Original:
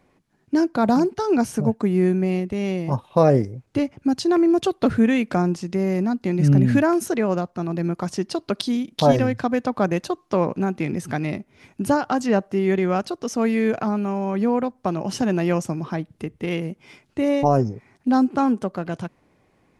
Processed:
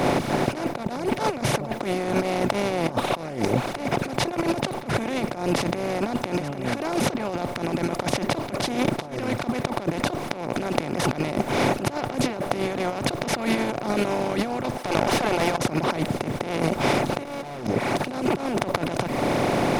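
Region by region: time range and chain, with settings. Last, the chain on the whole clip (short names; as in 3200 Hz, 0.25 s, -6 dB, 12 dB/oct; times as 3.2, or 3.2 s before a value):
14.77–15.58 HPF 710 Hz 24 dB/oct + tube stage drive 31 dB, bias 0.6
17.25–17.67 HPF 290 Hz 6 dB/oct + sample leveller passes 5
whole clip: per-bin compression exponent 0.2; reverb removal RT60 1 s; negative-ratio compressor -16 dBFS, ratio -0.5; gain -8 dB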